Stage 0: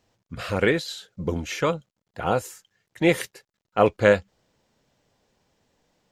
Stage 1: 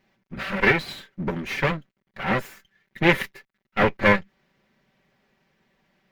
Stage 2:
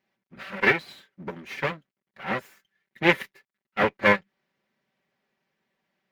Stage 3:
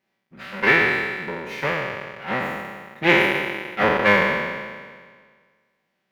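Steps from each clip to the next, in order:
minimum comb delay 5.2 ms; ten-band EQ 125 Hz +4 dB, 250 Hz +5 dB, 2000 Hz +10 dB, 8000 Hz -11 dB
HPF 220 Hz 6 dB/oct; upward expander 1.5:1, over -33 dBFS
spectral trails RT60 1.71 s

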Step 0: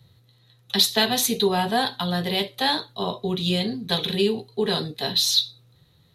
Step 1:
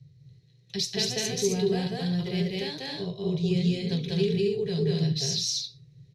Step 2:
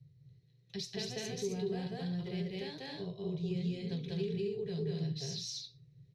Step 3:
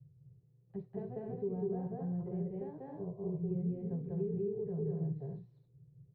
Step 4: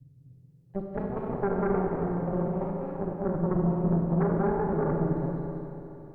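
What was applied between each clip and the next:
EQ curve 100 Hz 0 dB, 150 Hz +13 dB, 230 Hz -13 dB, 400 Hz -1 dB, 880 Hz -20 dB, 1300 Hz -21 dB, 2300 Hz -4 dB, 3600 Hz -15 dB, 5400 Hz +2 dB, 12000 Hz -22 dB; on a send: loudspeakers at several distances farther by 67 m 0 dB, 91 m -4 dB; on the sum: gain -3.5 dB
high shelf 3700 Hz -8 dB; compressor 1.5:1, threshold -31 dBFS, peak gain reduction 4.5 dB; gain -7 dB
LPF 1000 Hz 24 dB/oct
added harmonics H 6 -12 dB, 7 -28 dB, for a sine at -24.5 dBFS; Schroeder reverb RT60 3.2 s, combs from 32 ms, DRR 1 dB; gain +7 dB

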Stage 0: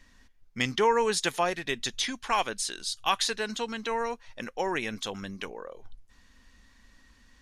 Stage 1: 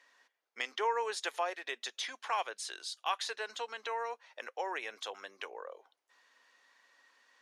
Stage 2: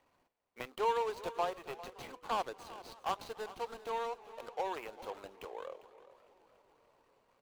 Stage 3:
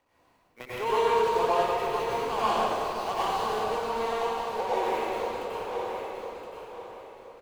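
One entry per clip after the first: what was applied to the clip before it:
Bessel high-pass 750 Hz, order 6; tilt -3 dB/oct; in parallel at +3 dB: compressor, threshold -40 dBFS, peak gain reduction 17 dB; on the sum: gain -7 dB
median filter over 25 samples; echo 0.4 s -16.5 dB; warbling echo 0.287 s, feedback 74%, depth 166 cents, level -22 dB; gain +2 dB
feedback echo 1.02 s, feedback 25%, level -8 dB; reverb RT60 2.6 s, pre-delay 86 ms, DRR -10.5 dB

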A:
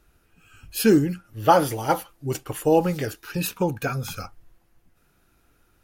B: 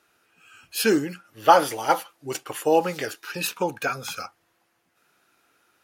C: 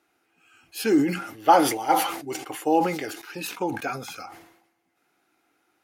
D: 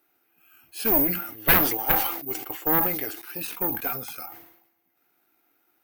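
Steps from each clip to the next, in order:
weighting filter A; gain +2.5 dB
small resonant body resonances 310/760/2100 Hz, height 10 dB, ringing for 25 ms; sustainer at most 71 dB/s; gain -7 dB
careless resampling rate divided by 3×, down filtered, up zero stuff; added harmonics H 3 -7 dB, 4 -7 dB, 7 -14 dB, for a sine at 4.5 dBFS; gain -8 dB

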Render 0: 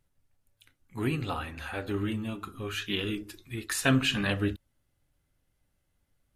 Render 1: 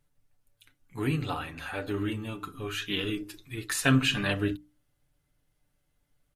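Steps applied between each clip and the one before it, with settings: notches 60/120/180/240/300 Hz; comb 6.8 ms, depth 47%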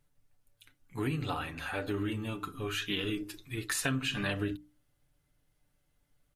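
compressor 5:1, threshold -29 dBFS, peak gain reduction 11 dB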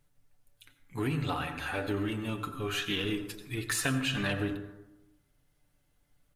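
in parallel at -10 dB: overloaded stage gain 34 dB; on the sum: reverb RT60 0.95 s, pre-delay 78 ms, DRR 9.5 dB

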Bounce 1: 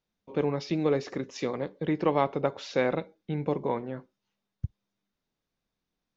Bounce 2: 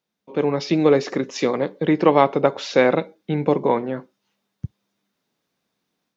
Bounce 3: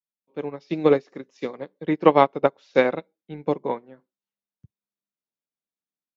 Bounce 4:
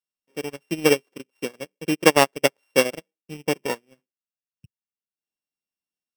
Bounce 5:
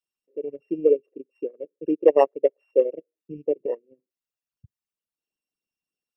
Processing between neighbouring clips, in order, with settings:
HPF 160 Hz 12 dB/oct; AGC gain up to 6.5 dB; gain +4 dB
low shelf 61 Hz -6 dB; upward expander 2.5:1, over -29 dBFS; gain +2 dB
sample sorter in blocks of 16 samples; transient shaper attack +1 dB, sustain -12 dB; gain -1 dB
formant sharpening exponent 3

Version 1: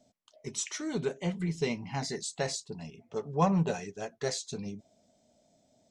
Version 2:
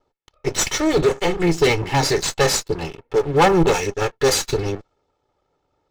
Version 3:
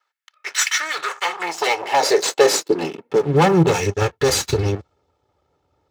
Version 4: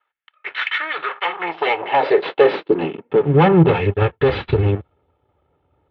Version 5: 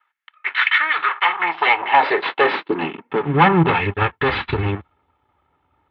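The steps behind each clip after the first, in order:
minimum comb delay 2.3 ms; low-pass opened by the level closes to 2800 Hz, open at -27.5 dBFS; sample leveller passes 3; gain +7.5 dB
compressor 2:1, threshold -18 dBFS, peak gain reduction 4.5 dB; high-pass sweep 1600 Hz -> 74 Hz, 0.85–4.21; gain +2 dB
steep low-pass 3400 Hz 48 dB/oct; low shelf 360 Hz +4.5 dB; in parallel at -8 dB: soft clip -8 dBFS, distortion -16 dB; on the sum: gain -2.5 dB
graphic EQ 125/250/500/1000/2000/4000 Hz -4/+4/-8/+9/+7/+4 dB; gain -2.5 dB

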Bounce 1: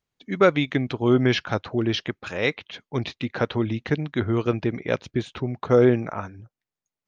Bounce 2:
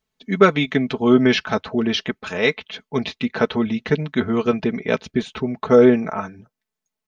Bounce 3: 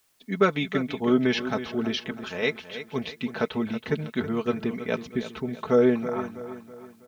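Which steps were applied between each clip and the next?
comb 4.6 ms, depth 71%; gain +3 dB
requantised 10-bit, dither triangular; feedback echo 0.324 s, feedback 44%, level -12 dB; gain -7.5 dB

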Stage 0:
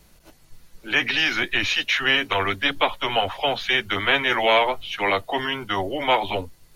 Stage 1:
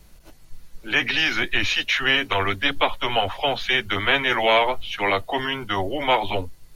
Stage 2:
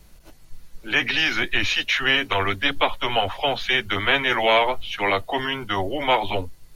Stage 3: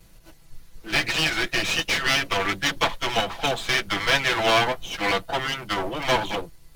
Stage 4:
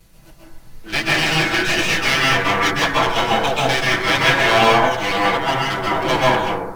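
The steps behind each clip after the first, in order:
low shelf 74 Hz +8.5 dB
nothing audible
minimum comb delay 6 ms
plate-style reverb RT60 0.91 s, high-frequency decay 0.3×, pre-delay 0.12 s, DRR -5.5 dB; gain +1 dB

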